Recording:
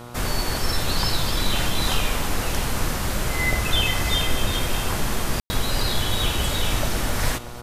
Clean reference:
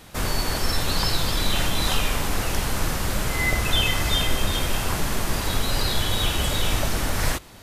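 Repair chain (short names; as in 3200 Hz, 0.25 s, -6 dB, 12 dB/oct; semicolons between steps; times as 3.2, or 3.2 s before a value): de-hum 120.4 Hz, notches 12; room tone fill 5.4–5.5; inverse comb 0.637 s -15.5 dB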